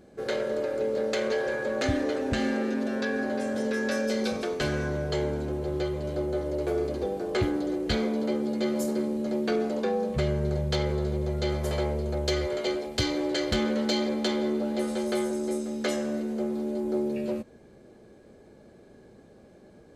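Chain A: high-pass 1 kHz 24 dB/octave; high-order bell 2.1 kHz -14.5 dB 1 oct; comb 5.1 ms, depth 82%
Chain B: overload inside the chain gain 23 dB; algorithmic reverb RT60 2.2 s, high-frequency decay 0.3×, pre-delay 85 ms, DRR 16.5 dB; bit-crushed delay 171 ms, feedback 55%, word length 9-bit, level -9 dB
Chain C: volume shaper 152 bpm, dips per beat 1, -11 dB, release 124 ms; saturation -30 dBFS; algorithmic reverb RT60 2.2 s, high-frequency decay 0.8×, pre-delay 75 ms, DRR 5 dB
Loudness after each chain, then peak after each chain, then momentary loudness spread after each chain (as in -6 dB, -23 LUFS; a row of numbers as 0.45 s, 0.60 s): -38.5 LUFS, -29.0 LUFS, -33.5 LUFS; -15.5 dBFS, -18.0 dBFS, -22.0 dBFS; 14 LU, 3 LU, 12 LU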